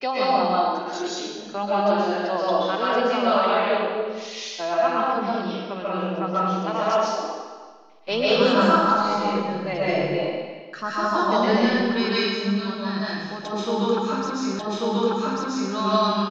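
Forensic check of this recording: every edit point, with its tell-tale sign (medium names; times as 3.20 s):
14.59 s: repeat of the last 1.14 s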